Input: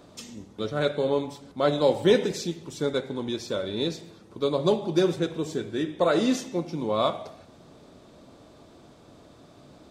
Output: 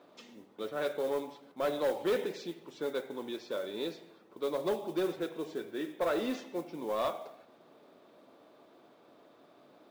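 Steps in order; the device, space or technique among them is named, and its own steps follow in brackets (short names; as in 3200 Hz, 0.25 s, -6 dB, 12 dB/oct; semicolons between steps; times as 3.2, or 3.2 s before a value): carbon microphone (BPF 330–3100 Hz; soft clip -19 dBFS, distortion -14 dB; modulation noise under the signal 24 dB); gain -5 dB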